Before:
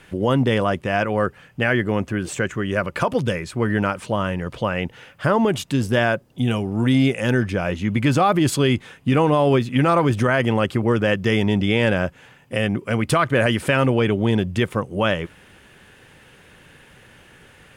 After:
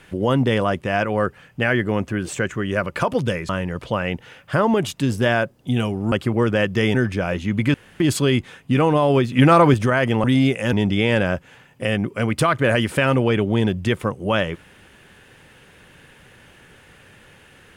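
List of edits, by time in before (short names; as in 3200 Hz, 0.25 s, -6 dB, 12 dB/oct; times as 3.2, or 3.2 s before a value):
3.49–4.2 cut
6.83–7.32 swap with 10.61–11.44
8.11–8.37 room tone
9.69–10.11 gain +4.5 dB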